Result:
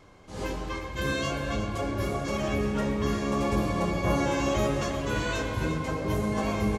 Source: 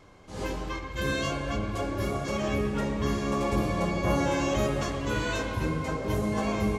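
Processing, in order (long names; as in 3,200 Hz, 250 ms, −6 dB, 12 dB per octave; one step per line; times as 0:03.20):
single-tap delay 354 ms −10 dB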